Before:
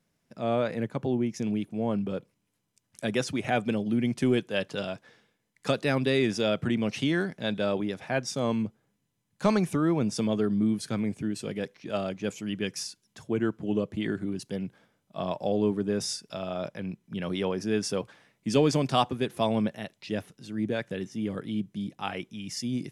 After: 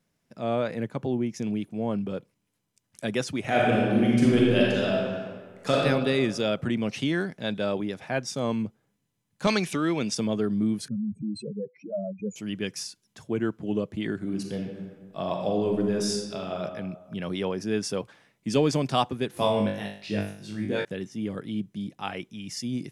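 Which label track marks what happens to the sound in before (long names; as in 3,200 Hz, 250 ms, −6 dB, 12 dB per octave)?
3.450000	5.770000	thrown reverb, RT60 1.7 s, DRR −5 dB
9.470000	10.150000	meter weighting curve D
10.880000	12.360000	expanding power law on the bin magnitudes exponent 3.9
14.180000	16.590000	thrown reverb, RT60 1.4 s, DRR 2 dB
19.310000	20.850000	flutter between parallel walls apart 3.4 metres, dies away in 0.49 s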